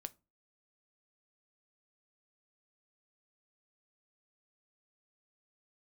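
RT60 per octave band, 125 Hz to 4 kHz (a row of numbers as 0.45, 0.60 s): 0.40, 0.40, 0.30, 0.30, 0.20, 0.20 s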